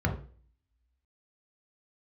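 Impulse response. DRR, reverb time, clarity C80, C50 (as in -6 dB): 2.0 dB, 0.40 s, 13.5 dB, 9.0 dB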